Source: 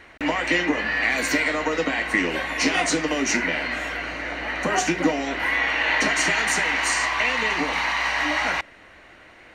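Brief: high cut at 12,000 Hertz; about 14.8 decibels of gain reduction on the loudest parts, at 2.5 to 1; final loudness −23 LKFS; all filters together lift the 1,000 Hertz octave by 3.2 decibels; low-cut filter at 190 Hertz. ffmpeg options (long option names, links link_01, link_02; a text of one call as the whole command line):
ffmpeg -i in.wav -af "highpass=190,lowpass=12000,equalizer=frequency=1000:width_type=o:gain=4,acompressor=threshold=-40dB:ratio=2.5,volume=11.5dB" out.wav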